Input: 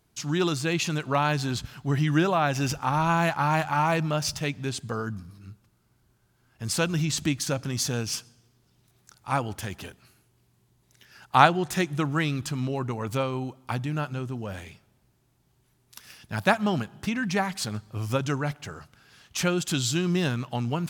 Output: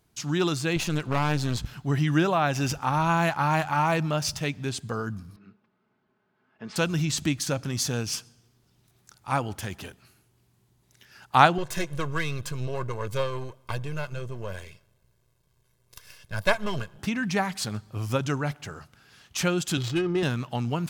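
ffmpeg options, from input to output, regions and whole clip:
-filter_complex "[0:a]asettb=1/sr,asplit=3[a][b][c];[a]atrim=end=0.764[d];[b]atrim=start=0.76:end=1.8,asetpts=PTS-STARTPTS,afade=t=in:d=0.004:c=qsin,afade=t=out:st=1.036:d=0.004:c=qsin,lowshelf=f=110:g=10.5,aeval=exprs='clip(val(0),-1,0.0211)':c=same[e];[c]atrim=start=1.796[f];[d][e]acrossfade=d=0.004:c1=hsin:c2=qsin[g];[g][f]acrossfade=d=0.004:c1=qsin:c2=hsin,asettb=1/sr,asplit=3[h][i][j];[h]atrim=end=5.364[k];[i]atrim=start=5.36:end=6.76,asetpts=PTS-STARTPTS,afade=t=in:d=0.004:c=qsin,afade=t=out:st=1.396:d=0.004:c=qsin,highpass=230,lowpass=2.8k,aemphasis=mode=reproduction:type=50fm,aecho=1:1:4.7:0.47,atrim=end_sample=61740[l];[j]atrim=start=6.756[m];[k][l]acrossfade=d=0.004:c1=hsin:c2=qsin[n];[n][m]acrossfade=d=0.004:c1=qsin:c2=hsin,asettb=1/sr,asplit=3[o][p][q];[o]atrim=end=11.584[r];[p]atrim=start=11.58:end=16.99,asetpts=PTS-STARTPTS,afade=t=in:d=0.004:c=qsin,afade=t=out:st=5.406:d=0.004:c=qsin,aeval=exprs='if(lt(val(0),0),0.251*val(0),val(0))':c=same,aecho=1:1:1.9:0.66,atrim=end_sample=238581[s];[q]atrim=start=16.986[t];[r][s]acrossfade=d=0.004:c1=hsin:c2=qsin[u];[u][t]acrossfade=d=0.004:c1=qsin:c2=hsin,asettb=1/sr,asplit=3[v][w][x];[v]atrim=end=19.774[y];[w]atrim=start=19.77:end=20.23,asetpts=PTS-STARTPTS,afade=t=in:d=0.004:c=qsin,afade=t=out:st=0.456:d=0.004:c=qsin,aecho=1:1:2.4:0.78,atrim=end_sample=20286,adynamicsmooth=sensitivity=2:basefreq=1.1k[z];[x]atrim=start=20.226[aa];[y][z]acrossfade=d=0.004:c1=hsin:c2=qsin[ab];[ab][aa]acrossfade=d=0.004:c1=qsin:c2=hsin"

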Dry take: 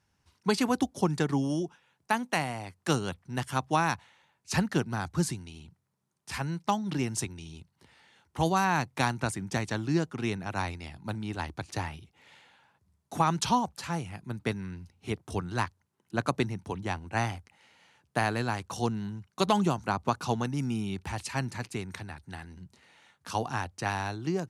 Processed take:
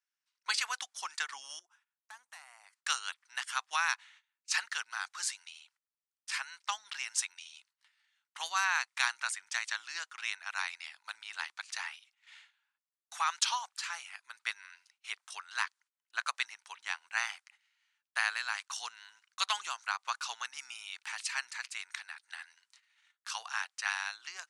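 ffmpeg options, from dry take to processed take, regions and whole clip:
-filter_complex "[0:a]asettb=1/sr,asplit=3[a][b][c];[a]atrim=end=1.594[d];[b]atrim=start=1.59:end=2.73,asetpts=PTS-STARTPTS,afade=t=in:d=0.004:c=qsin,afade=t=out:st=1.136:d=0.004:c=qsin,asoftclip=type=hard:threshold=-24.5dB,equalizer=f=3.2k:w=0.56:g=-14.5,acompressor=threshold=-42dB:ratio=2.5:attack=3.2:release=140:knee=1:detection=peak[e];[c]atrim=start=2.726[f];[d][e]acrossfade=d=0.004:c1=hsin:c2=qsin[g];[g][f]acrossfade=d=0.004:c1=qsin:c2=hsin,lowpass=f=9.5k:w=0.5412,lowpass=f=9.5k:w=1.3066,agate=range=-17dB:threshold=-57dB:ratio=16:detection=peak,highpass=f=1.3k:w=0.5412,highpass=f=1.3k:w=1.3066,volume=2.5dB"

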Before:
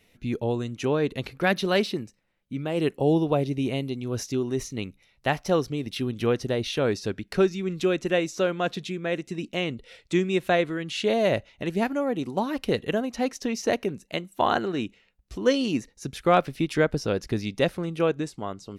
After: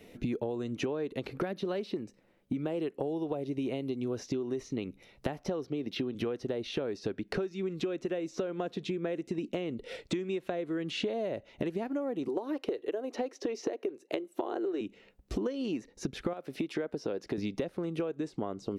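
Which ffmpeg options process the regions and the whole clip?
-filter_complex "[0:a]asettb=1/sr,asplit=3[a][b][c];[a]atrim=end=5.654[d];[b]atrim=start=5.65:end=6.15,asetpts=PTS-STARTPTS,afade=t=in:d=0.004:c=qsin,afade=t=out:st=0.496:d=0.004:c=qsin,highpass=120,equalizer=f=9.3k:t=o:w=0.51:g=-15[e];[c]atrim=start=6.146[f];[d][e]acrossfade=d=0.004:c1=hsin:c2=qsin[g];[g][f]acrossfade=d=0.004:c1=qsin:c2=hsin,asettb=1/sr,asplit=3[h][i][j];[h]atrim=end=12.284[k];[i]atrim=start=12.28:end=14.81,asetpts=PTS-STARTPTS,afade=t=in:d=0.004:c=qsin,afade=t=out:st=2.526:d=0.004:c=qsin,highpass=100,lowshelf=f=260:t=q:w=3:g=-9.5[l];[j]atrim=start=14.806[m];[k][l]acrossfade=d=0.004:c1=hsin:c2=qsin[n];[n][m]acrossfade=d=0.004:c1=qsin:c2=hsin,asettb=1/sr,asplit=3[o][p][q];[o]atrim=end=16.334[r];[p]atrim=start=16.33:end=17.38,asetpts=PTS-STARTPTS,afade=t=in:d=0.004:c=qsin,afade=t=out:st=1.046:d=0.004:c=qsin,highpass=f=340:p=1,acompressor=threshold=-39dB:ratio=1.5:attack=3.2:release=140:knee=1:detection=peak[s];[q]atrim=start=17.376[t];[r][s]acrossfade=d=0.004:c1=hsin:c2=qsin[u];[u][t]acrossfade=d=0.004:c1=qsin:c2=hsin,acrossover=split=600|6000[v][w][x];[v]acompressor=threshold=-33dB:ratio=4[y];[w]acompressor=threshold=-32dB:ratio=4[z];[x]acompressor=threshold=-60dB:ratio=4[aa];[y][z][aa]amix=inputs=3:normalize=0,equalizer=f=360:t=o:w=2.4:g=13,acompressor=threshold=-32dB:ratio=16,volume=2dB"

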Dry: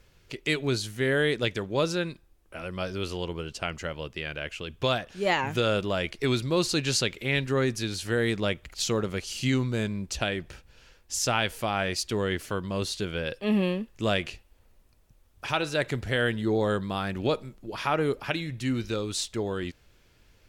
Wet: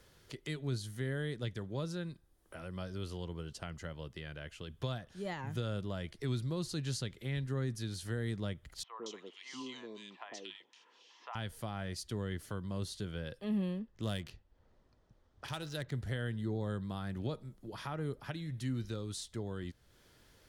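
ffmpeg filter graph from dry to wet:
-filter_complex "[0:a]asettb=1/sr,asplit=3[a][b][c];[a]atrim=end=8.834[d];[b]atrim=start=8.83:end=11.35,asetpts=PTS-STARTPTS,afade=t=in:d=0.004:c=qsin,afade=t=out:st=2.516:d=0.004:c=qsin,highpass=f=330:w=0.5412,highpass=f=330:w=1.3066,equalizer=f=380:t=q:w=4:g=-4,equalizer=f=570:t=q:w=4:g=-9,equalizer=f=1k:t=q:w=4:g=9,equalizer=f=1.5k:t=q:w=4:g=-10,equalizer=f=2.8k:t=q:w=4:g=4,equalizer=f=4.6k:t=q:w=4:g=-6,lowpass=f=5.9k:w=0.5412,lowpass=f=5.9k:w=1.3066,acrossover=split=690|2100[e][f][g];[e]adelay=100[h];[g]adelay=230[i];[h][f][i]amix=inputs=3:normalize=0,atrim=end_sample=111132[j];[c]atrim=start=11.346[k];[d][j]acrossfade=d=0.004:c1=hsin:c2=qsin[l];[l][k]acrossfade=d=0.004:c1=qsin:c2=hsin,asettb=1/sr,asplit=3[m][n][o];[m]atrim=end=13.794[p];[n]atrim=start=13.79:end=15.92,asetpts=PTS-STARTPTS,afade=t=in:d=0.004:c=qsin,afade=t=out:st=2.126:d=0.004:c=qsin,equalizer=f=5.9k:t=o:w=1.6:g=10.5,adynamicsmooth=sensitivity=3.5:basefreq=2k[q];[o]atrim=start=15.916[r];[p][q]acrossfade=d=0.004:c1=hsin:c2=qsin[s];[s][r]acrossfade=d=0.004:c1=qsin:c2=hsin,lowshelf=f=66:g=-12,acrossover=split=170[t][u];[u]acompressor=threshold=-53dB:ratio=2[v];[t][v]amix=inputs=2:normalize=0,superequalizer=12b=0.501:16b=1.58"

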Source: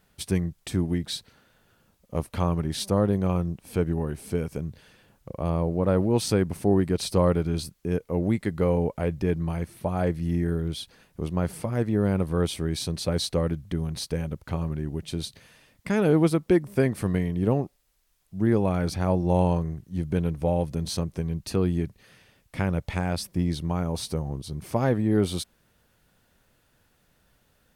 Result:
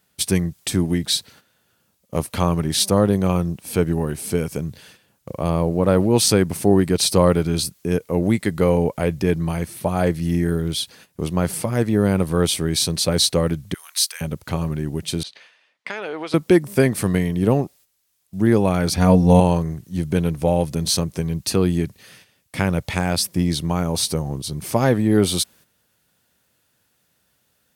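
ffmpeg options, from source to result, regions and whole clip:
-filter_complex "[0:a]asettb=1/sr,asplit=3[a][b][c];[a]atrim=end=13.744[d];[b]atrim=start=13.74:end=14.21,asetpts=PTS-STARTPTS,afade=t=in:d=0.004:c=qsin,afade=t=out:st=0.466:d=0.004:c=qsin,highpass=f=1.2k:w=0.5412,highpass=f=1.2k:w=1.3066,highshelf=f=8.2k:g=6.5[e];[c]atrim=start=14.206[f];[d][e]acrossfade=d=0.004:c1=hsin:c2=qsin[g];[g][f]acrossfade=d=0.004:c1=qsin:c2=hsin,asettb=1/sr,asplit=3[h][i][j];[h]atrim=end=15.234[k];[i]atrim=start=15.23:end=16.34,asetpts=PTS-STARTPTS,afade=t=in:d=0.004:c=qsin,afade=t=out:st=1.106:d=0.004:c=qsin,highpass=620,lowpass=2.8k,acompressor=threshold=-31dB:ratio=6:attack=3.2:release=140:knee=1:detection=peak,adynamicequalizer=threshold=0.00282:dfrequency=2200:dqfactor=0.7:tfrequency=2200:tqfactor=0.7:attack=5:release=100:ratio=0.375:range=2:mode=boostabove:tftype=highshelf[l];[j]atrim=start=16.336[m];[k][l]acrossfade=d=0.004:c1=hsin:c2=qsin[n];[n][m]acrossfade=d=0.004:c1=qsin:c2=hsin,asettb=1/sr,asplit=3[o][p][q];[o]atrim=end=18.974[r];[p]atrim=start=18.97:end=19.4,asetpts=PTS-STARTPTS,afade=t=in:d=0.004:c=qsin,afade=t=out:st=0.426:d=0.004:c=qsin,lowshelf=f=160:g=10,aecho=1:1:4.2:0.67,atrim=end_sample=18963[s];[q]atrim=start=19.396[t];[r][s]acrossfade=d=0.004:c1=hsin:c2=qsin[u];[u][t]acrossfade=d=0.004:c1=qsin:c2=hsin,highpass=87,highshelf=f=3k:g=9,agate=range=-10dB:threshold=-52dB:ratio=16:detection=peak,volume=6dB"

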